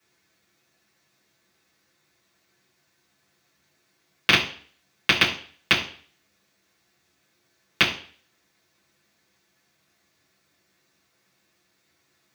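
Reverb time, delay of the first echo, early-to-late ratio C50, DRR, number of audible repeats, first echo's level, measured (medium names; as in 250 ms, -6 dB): 0.45 s, no echo, 9.0 dB, -7.5 dB, no echo, no echo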